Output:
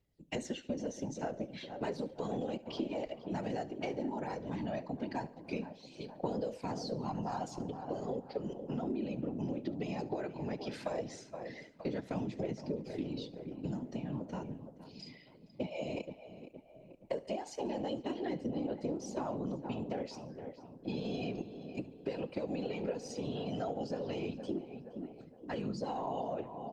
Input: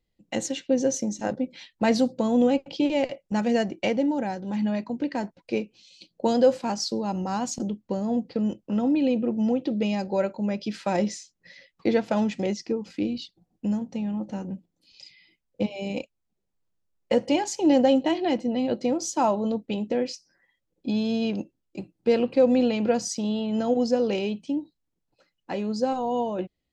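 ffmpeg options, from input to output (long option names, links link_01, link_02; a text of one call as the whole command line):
ffmpeg -i in.wav -filter_complex "[0:a]acrossover=split=200|1400|4500[link_01][link_02][link_03][link_04];[link_01]acompressor=threshold=-41dB:ratio=4[link_05];[link_02]acompressor=threshold=-21dB:ratio=4[link_06];[link_03]acompressor=threshold=-41dB:ratio=4[link_07];[link_04]acompressor=threshold=-46dB:ratio=4[link_08];[link_05][link_06][link_07][link_08]amix=inputs=4:normalize=0,asplit=3[link_09][link_10][link_11];[link_09]afade=type=out:start_time=7.4:duration=0.02[link_12];[link_10]aecho=1:1:2.6:0.31,afade=type=in:start_time=7.4:duration=0.02,afade=type=out:start_time=8.23:duration=0.02[link_13];[link_11]afade=type=in:start_time=8.23:duration=0.02[link_14];[link_12][link_13][link_14]amix=inputs=3:normalize=0,asplit=3[link_15][link_16][link_17];[link_15]afade=type=out:start_time=19.33:duration=0.02[link_18];[link_16]adynamicequalizer=threshold=0.00316:dfrequency=3300:dqfactor=0.84:tfrequency=3300:tqfactor=0.84:attack=5:release=100:ratio=0.375:range=2:mode=cutabove:tftype=bell,afade=type=in:start_time=19.33:duration=0.02,afade=type=out:start_time=19.81:duration=0.02[link_19];[link_17]afade=type=in:start_time=19.81:duration=0.02[link_20];[link_18][link_19][link_20]amix=inputs=3:normalize=0,aphaser=in_gain=1:out_gain=1:delay=3.5:decay=0.42:speed=0.16:type=triangular,asplit=2[link_21][link_22];[link_22]adelay=468,lowpass=frequency=2100:poles=1,volume=-13.5dB,asplit=2[link_23][link_24];[link_24]adelay=468,lowpass=frequency=2100:poles=1,volume=0.48,asplit=2[link_25][link_26];[link_26]adelay=468,lowpass=frequency=2100:poles=1,volume=0.48,asplit=2[link_27][link_28];[link_28]adelay=468,lowpass=frequency=2100:poles=1,volume=0.48,asplit=2[link_29][link_30];[link_30]adelay=468,lowpass=frequency=2100:poles=1,volume=0.48[link_31];[link_23][link_25][link_27][link_29][link_31]amix=inputs=5:normalize=0[link_32];[link_21][link_32]amix=inputs=2:normalize=0,afftfilt=real='hypot(re,im)*cos(2*PI*random(0))':imag='hypot(re,im)*sin(2*PI*random(1))':win_size=512:overlap=0.75,acompressor=threshold=-36dB:ratio=5,equalizer=frequency=97:width_type=o:width=0.34:gain=-2.5,asplit=2[link_33][link_34];[link_34]aecho=0:1:71|142|213|284:0.1|0.053|0.0281|0.0149[link_35];[link_33][link_35]amix=inputs=2:normalize=0,volume=2dB" -ar 48000 -c:a libopus -b:a 48k out.opus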